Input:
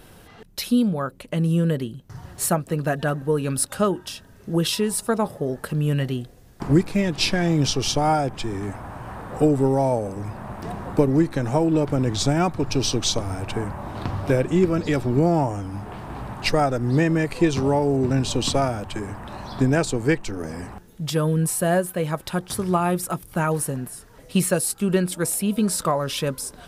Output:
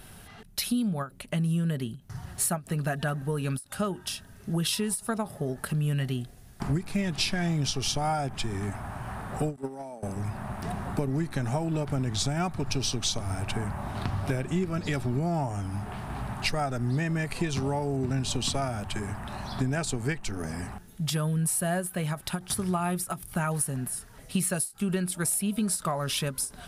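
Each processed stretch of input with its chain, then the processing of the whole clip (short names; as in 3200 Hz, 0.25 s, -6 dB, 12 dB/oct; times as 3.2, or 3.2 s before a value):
9.56–10.03 steep high-pass 160 Hz 48 dB/oct + gate -18 dBFS, range -16 dB
whole clip: thirty-one-band EQ 315 Hz -9 dB, 500 Hz -11 dB, 1000 Hz -4 dB, 10000 Hz +6 dB; compressor 3:1, threshold -26 dBFS; ending taper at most 260 dB/s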